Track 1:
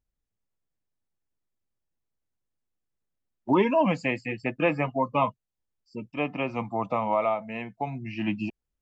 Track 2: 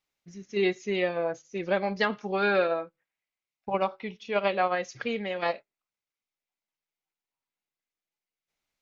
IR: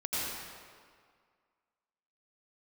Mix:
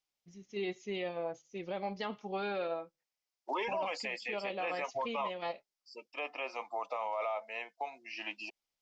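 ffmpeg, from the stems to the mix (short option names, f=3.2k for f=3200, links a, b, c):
-filter_complex "[0:a]highpass=f=480:w=0.5412,highpass=f=480:w=1.3066,equalizer=f=5.1k:w=1.6:g=13,volume=-4.5dB[a];[1:a]equalizer=f=800:t=o:w=0.33:g=4,equalizer=f=1.6k:t=o:w=0.33:g=-8,equalizer=f=3.15k:t=o:w=0.33:g=5,volume=-9dB[b];[a][b]amix=inputs=2:normalize=0,alimiter=level_in=3dB:limit=-24dB:level=0:latency=1:release=20,volume=-3dB"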